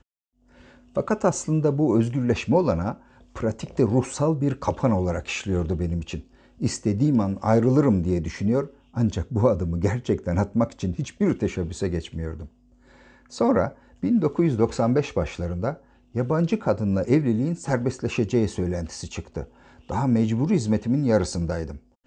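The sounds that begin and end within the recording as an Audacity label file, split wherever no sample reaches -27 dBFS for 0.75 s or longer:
0.970000	12.420000	sound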